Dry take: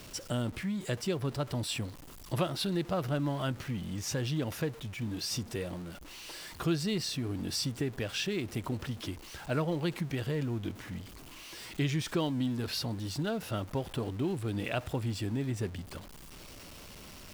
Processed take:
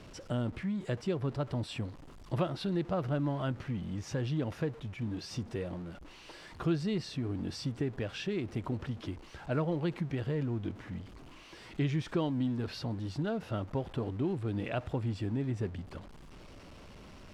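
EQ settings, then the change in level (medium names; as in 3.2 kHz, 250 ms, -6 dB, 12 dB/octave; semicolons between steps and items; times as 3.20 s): distance through air 52 m; treble shelf 2.5 kHz -9.5 dB; 0.0 dB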